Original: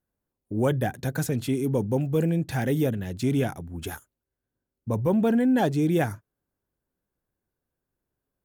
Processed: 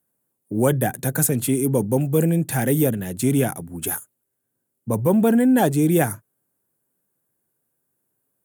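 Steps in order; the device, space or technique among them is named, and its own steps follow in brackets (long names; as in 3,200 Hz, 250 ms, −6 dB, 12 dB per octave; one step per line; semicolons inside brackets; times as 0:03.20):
budget condenser microphone (high-pass filter 110 Hz 24 dB per octave; high shelf with overshoot 6,900 Hz +10.5 dB, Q 1.5)
level +5 dB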